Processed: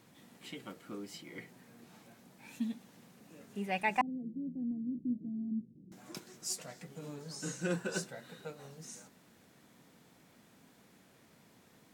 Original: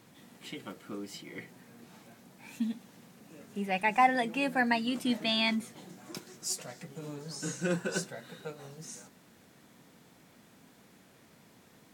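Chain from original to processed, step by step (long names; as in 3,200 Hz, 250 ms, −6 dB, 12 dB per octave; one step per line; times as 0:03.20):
0:04.01–0:05.92: inverse Chebyshev low-pass filter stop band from 1,000 Hz, stop band 60 dB
level −3.5 dB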